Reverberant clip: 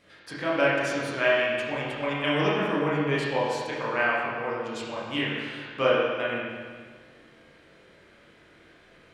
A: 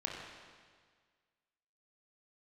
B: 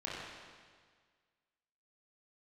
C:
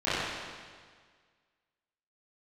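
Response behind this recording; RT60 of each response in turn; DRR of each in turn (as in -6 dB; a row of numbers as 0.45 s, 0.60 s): B; 1.7 s, 1.7 s, 1.7 s; -2.0 dB, -7.5 dB, -16.0 dB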